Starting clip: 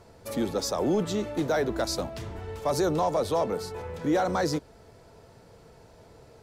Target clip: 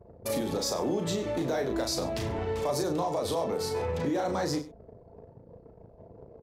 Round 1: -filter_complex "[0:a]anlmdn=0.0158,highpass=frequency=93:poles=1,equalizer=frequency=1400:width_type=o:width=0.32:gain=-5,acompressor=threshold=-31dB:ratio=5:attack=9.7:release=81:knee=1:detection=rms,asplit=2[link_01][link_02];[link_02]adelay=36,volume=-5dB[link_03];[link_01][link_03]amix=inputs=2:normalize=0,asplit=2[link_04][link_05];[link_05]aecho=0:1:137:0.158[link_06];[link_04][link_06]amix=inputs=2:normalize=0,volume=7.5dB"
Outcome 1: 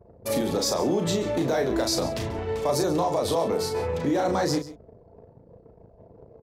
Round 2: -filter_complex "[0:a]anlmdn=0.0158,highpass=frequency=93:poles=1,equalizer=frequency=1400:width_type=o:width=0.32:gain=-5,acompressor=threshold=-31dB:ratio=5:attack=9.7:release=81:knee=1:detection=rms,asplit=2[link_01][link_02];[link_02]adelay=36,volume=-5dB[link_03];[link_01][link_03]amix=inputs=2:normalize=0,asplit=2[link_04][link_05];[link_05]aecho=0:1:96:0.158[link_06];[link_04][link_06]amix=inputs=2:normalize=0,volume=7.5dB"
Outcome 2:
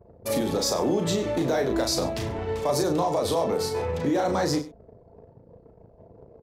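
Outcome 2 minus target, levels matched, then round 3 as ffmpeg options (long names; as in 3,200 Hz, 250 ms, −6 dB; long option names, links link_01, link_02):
downward compressor: peak gain reduction −5 dB
-filter_complex "[0:a]anlmdn=0.0158,highpass=frequency=93:poles=1,equalizer=frequency=1400:width_type=o:width=0.32:gain=-5,acompressor=threshold=-37.5dB:ratio=5:attack=9.7:release=81:knee=1:detection=rms,asplit=2[link_01][link_02];[link_02]adelay=36,volume=-5dB[link_03];[link_01][link_03]amix=inputs=2:normalize=0,asplit=2[link_04][link_05];[link_05]aecho=0:1:96:0.158[link_06];[link_04][link_06]amix=inputs=2:normalize=0,volume=7.5dB"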